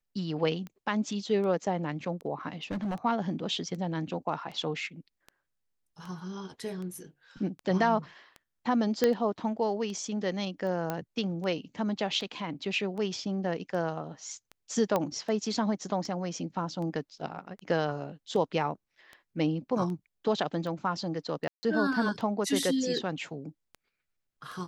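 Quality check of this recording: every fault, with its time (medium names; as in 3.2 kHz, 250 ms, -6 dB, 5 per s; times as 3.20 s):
tick 78 rpm -29 dBFS
2.63–2.96 s: clipped -28.5 dBFS
9.04 s: pop -11 dBFS
10.90 s: pop -17 dBFS
14.96 s: pop -14 dBFS
21.48–21.63 s: dropout 150 ms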